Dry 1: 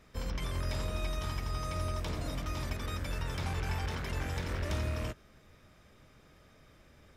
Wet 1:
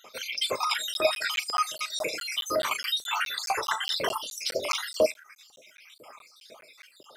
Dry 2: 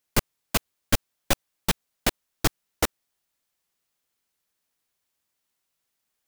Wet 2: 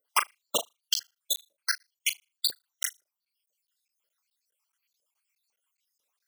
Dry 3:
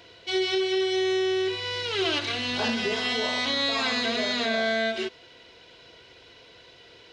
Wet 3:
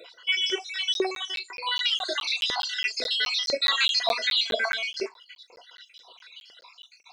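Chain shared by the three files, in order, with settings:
time-frequency cells dropped at random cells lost 63%
flutter between parallel walls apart 6.6 metres, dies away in 0.26 s
auto-filter notch square 8.6 Hz 720–1,700 Hz
reverb reduction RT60 0.55 s
notch filter 1,800 Hz, Q 10
auto-filter high-pass saw up 2 Hz 460–4,700 Hz
regular buffer underruns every 0.21 s, samples 512, zero, from 0:00.94
normalise the peak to −9 dBFS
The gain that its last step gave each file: +17.5, +3.0, +5.0 decibels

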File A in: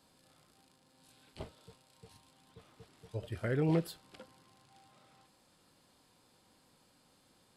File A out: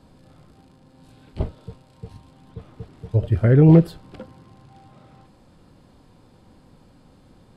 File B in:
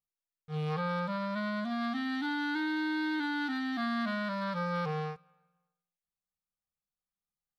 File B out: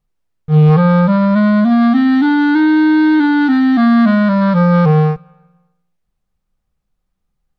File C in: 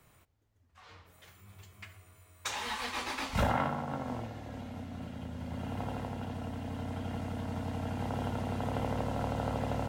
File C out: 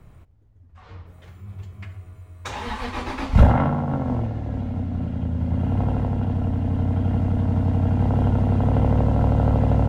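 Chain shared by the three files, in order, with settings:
spectral tilt −3.5 dB per octave
normalise the peak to −2 dBFS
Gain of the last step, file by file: +11.0, +17.0, +6.5 decibels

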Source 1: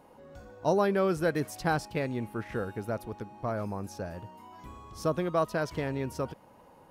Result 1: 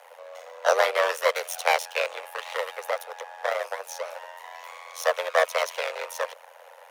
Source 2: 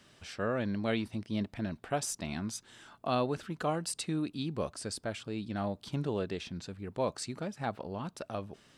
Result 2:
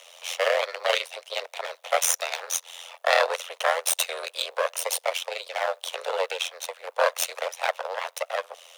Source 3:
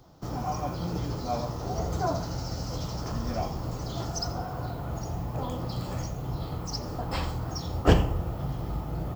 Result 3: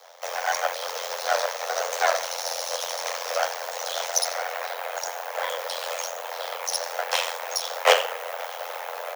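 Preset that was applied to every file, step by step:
lower of the sound and its delayed copy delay 0.31 ms
dynamic equaliser 740 Hz, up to −5 dB, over −45 dBFS, Q 1.7
amplitude modulation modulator 86 Hz, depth 90%
Butterworth high-pass 500 Hz 72 dB per octave
loudness normalisation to −27 LKFS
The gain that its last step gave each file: +15.0, +19.5, +17.0 decibels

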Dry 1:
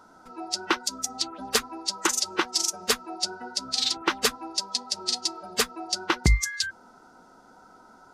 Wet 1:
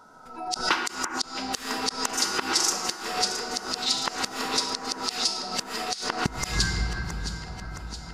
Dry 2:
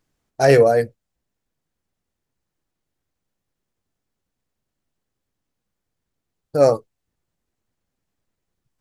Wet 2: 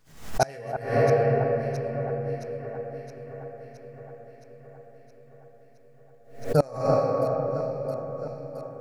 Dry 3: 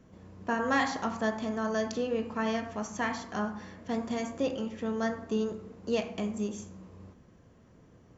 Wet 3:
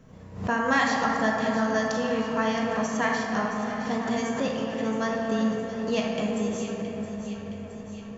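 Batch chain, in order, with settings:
rectangular room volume 200 cubic metres, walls hard, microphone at 0.37 metres
dynamic equaliser 450 Hz, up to −5 dB, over −34 dBFS, Q 1.8
tuned comb filter 160 Hz, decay 0.85 s, harmonics all, mix 70%
gate with flip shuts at −19 dBFS, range −29 dB
parametric band 320 Hz −10 dB 0.26 octaves
on a send: delay that swaps between a low-pass and a high-pass 334 ms, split 1,900 Hz, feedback 79%, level −9 dB
on the sum: background raised ahead of every attack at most 110 dB per second
loudness normalisation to −27 LKFS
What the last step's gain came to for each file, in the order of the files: +10.5, +12.0, +14.0 decibels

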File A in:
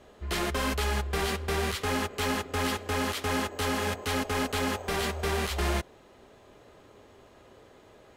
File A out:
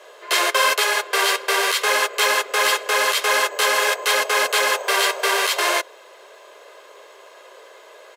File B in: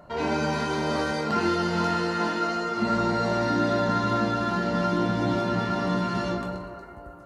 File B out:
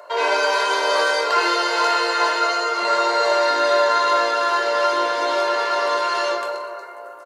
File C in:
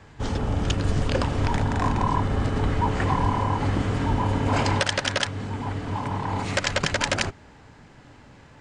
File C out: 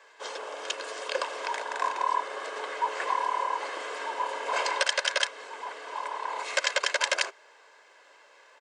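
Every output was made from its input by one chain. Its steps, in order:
Bessel high-pass filter 670 Hz, order 8
comb filter 1.9 ms, depth 50%
normalise the peak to −6 dBFS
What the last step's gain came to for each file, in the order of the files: +13.0, +10.5, −2.0 decibels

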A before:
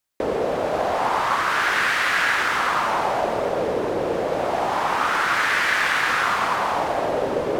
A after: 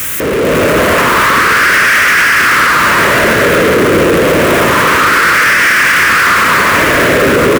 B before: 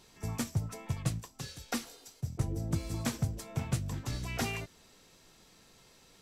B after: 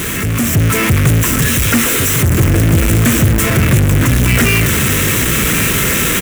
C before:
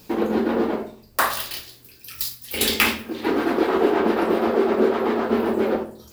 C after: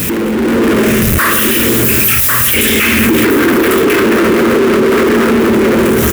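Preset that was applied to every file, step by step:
converter with a step at zero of −27 dBFS
phaser with its sweep stopped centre 1,900 Hz, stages 4
single-tap delay 1,099 ms −11 dB
power curve on the samples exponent 0.5
brickwall limiter −14 dBFS
automatic gain control gain up to 5.5 dB
high-pass filter 44 Hz
normalise the peak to −1.5 dBFS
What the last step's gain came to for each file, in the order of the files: +5.0, +8.5, +3.5 decibels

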